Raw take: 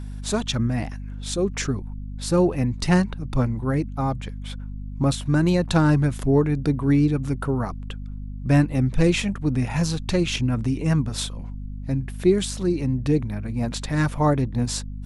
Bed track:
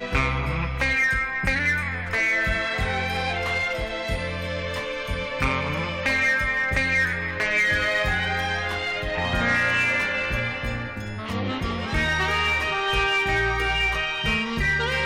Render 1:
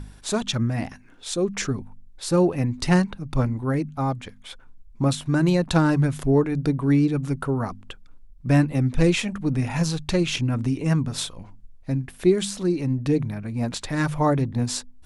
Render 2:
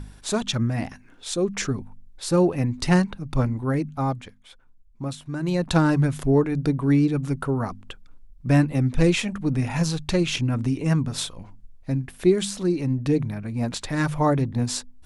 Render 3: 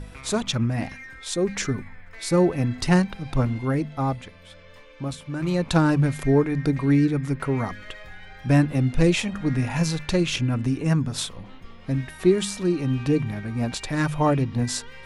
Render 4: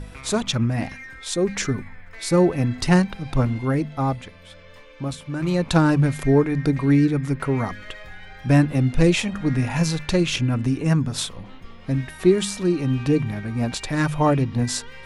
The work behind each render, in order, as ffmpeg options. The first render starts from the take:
-af "bandreject=f=50:t=h:w=4,bandreject=f=100:t=h:w=4,bandreject=f=150:t=h:w=4,bandreject=f=200:t=h:w=4,bandreject=f=250:t=h:w=4"
-filter_complex "[0:a]asplit=3[s0][s1][s2];[s0]atrim=end=4.39,asetpts=PTS-STARTPTS,afade=t=out:st=4.1:d=0.29:silence=0.354813[s3];[s1]atrim=start=4.39:end=5.4,asetpts=PTS-STARTPTS,volume=0.355[s4];[s2]atrim=start=5.4,asetpts=PTS-STARTPTS,afade=t=in:d=0.29:silence=0.354813[s5];[s3][s4][s5]concat=n=3:v=0:a=1"
-filter_complex "[1:a]volume=0.0944[s0];[0:a][s0]amix=inputs=2:normalize=0"
-af "volume=1.26"

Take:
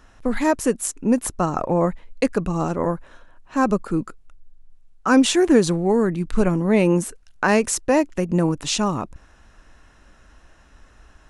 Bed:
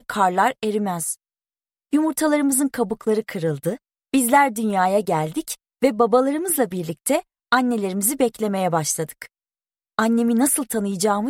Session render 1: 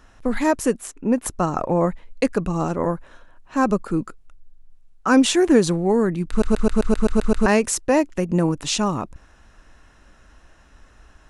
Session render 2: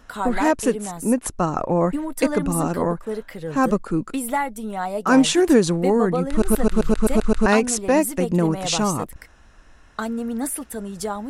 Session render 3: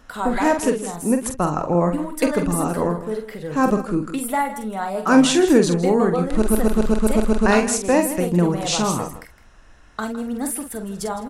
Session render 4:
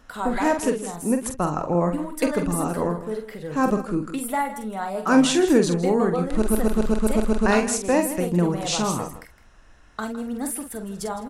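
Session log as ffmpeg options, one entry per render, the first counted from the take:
-filter_complex "[0:a]asettb=1/sr,asplit=3[s0][s1][s2];[s0]atrim=end=0.784[s3];[s1]atrim=start=0.78:end=1.26,asetpts=PTS-STARTPTS,afade=t=in:d=0.004:c=qsin,afade=t=out:st=0.476:d=0.004:c=qsin,bass=f=250:g=-3,treble=f=4000:g=-10[s4];[s2]atrim=start=1.256[s5];[s3][s4]acrossfade=d=0.004:c1=hsin:c2=qsin[s6];[s6][s5]acrossfade=d=0.004:c1=qsin:c2=hsin,asplit=10[s7][s8][s9][s10][s11][s12][s13][s14][s15][s16];[s7]atrim=end=6.422[s17];[s8]atrim=start=6.288:end=6.422[s18];[s9]atrim=start=6.288:end=6.422[s19];[s10]atrim=start=6.288:end=6.422[s20];[s11]atrim=start=6.288:end=6.422[s21];[s12]atrim=start=6.288:end=6.422[s22];[s13]atrim=start=6.288:end=6.422[s23];[s14]atrim=start=6.288:end=6.422[s24];[s15]atrim=start=6.288:end=6.422[s25];[s16]atrim=start=7.458[s26];[s17][s18]acrossfade=d=0.004:c1=hsin:c2=hsin[s27];[s27][s19]acrossfade=d=0.004:c1=hsin:c2=hsin[s28];[s28][s20]acrossfade=d=0.004:c1=hsin:c2=hsin[s29];[s29][s21]acrossfade=d=0.004:c1=hsin:c2=hsin[s30];[s30][s22]acrossfade=d=0.004:c1=hsin:c2=hsin[s31];[s31][s23]acrossfade=d=0.004:c1=hsin:c2=hsin[s32];[s32][s24]acrossfade=d=0.004:c1=hsin:c2=hsin[s33];[s33][s25]acrossfade=d=0.004:c1=hsin:c2=hsin[s34];[s34][s26]acrossfade=d=0.004:c1=hsin:c2=hsin"
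-filter_complex "[1:a]volume=0.398[s0];[0:a][s0]amix=inputs=2:normalize=0"
-filter_complex "[0:a]asplit=2[s0][s1];[s1]adelay=46,volume=0.447[s2];[s0][s2]amix=inputs=2:normalize=0,aecho=1:1:161:0.2"
-af "volume=0.708"

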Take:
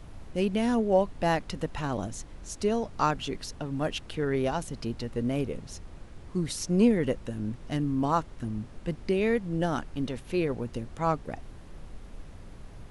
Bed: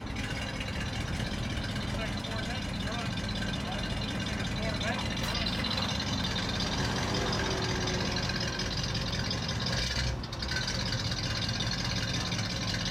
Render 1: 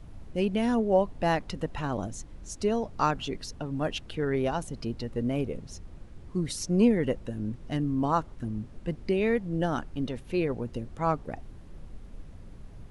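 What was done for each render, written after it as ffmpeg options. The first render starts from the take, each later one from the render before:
-af "afftdn=nr=6:nf=-47"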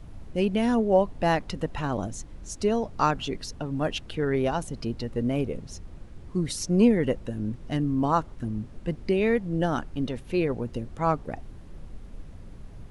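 -af "volume=1.33"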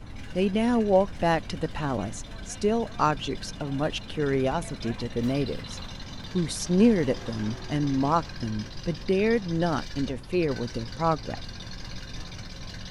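-filter_complex "[1:a]volume=0.335[s0];[0:a][s0]amix=inputs=2:normalize=0"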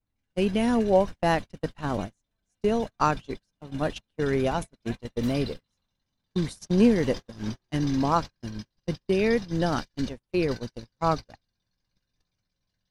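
-af "agate=range=0.00794:threshold=0.0398:ratio=16:detection=peak,highshelf=f=8000:g=7.5"

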